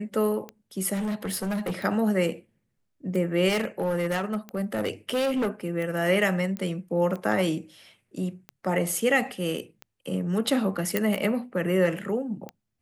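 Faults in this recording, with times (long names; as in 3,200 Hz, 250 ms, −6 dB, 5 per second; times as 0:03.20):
scratch tick 45 rpm −23 dBFS
0:00.93–0:01.73: clipping −25.5 dBFS
0:03.48–0:05.66: clipping −22 dBFS
0:06.57: click −20 dBFS
0:10.97: click −9 dBFS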